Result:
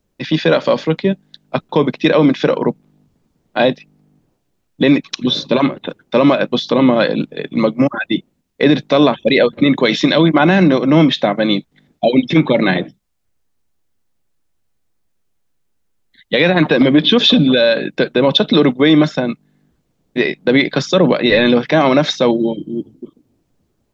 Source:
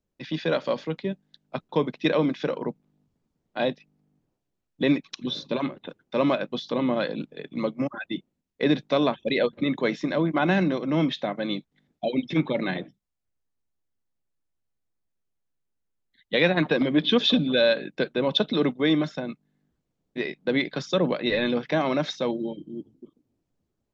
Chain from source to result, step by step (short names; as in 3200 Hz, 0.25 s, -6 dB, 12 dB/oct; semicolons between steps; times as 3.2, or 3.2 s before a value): 9.85–10.29 bell 3500 Hz +12.5 dB 1 oct; maximiser +15 dB; gain -1 dB